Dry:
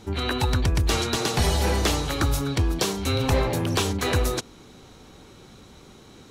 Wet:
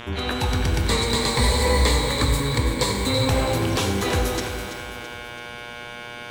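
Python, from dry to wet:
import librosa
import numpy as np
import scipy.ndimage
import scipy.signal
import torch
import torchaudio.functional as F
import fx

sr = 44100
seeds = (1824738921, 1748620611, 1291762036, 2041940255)

y = fx.dmg_buzz(x, sr, base_hz=120.0, harmonics=30, level_db=-37.0, tilt_db=-1, odd_only=False)
y = fx.ripple_eq(y, sr, per_octave=0.99, db=13, at=(0.88, 3.29))
y = fx.echo_feedback(y, sr, ms=332, feedback_pct=46, wet_db=-10.5)
y = fx.rev_shimmer(y, sr, seeds[0], rt60_s=1.3, semitones=12, shimmer_db=-8, drr_db=5.5)
y = F.gain(torch.from_numpy(y), -1.0).numpy()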